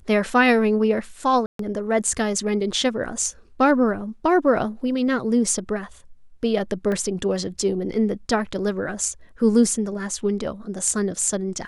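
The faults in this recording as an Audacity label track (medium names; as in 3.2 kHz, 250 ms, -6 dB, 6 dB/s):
1.460000	1.590000	dropout 133 ms
6.920000	6.920000	dropout 2.3 ms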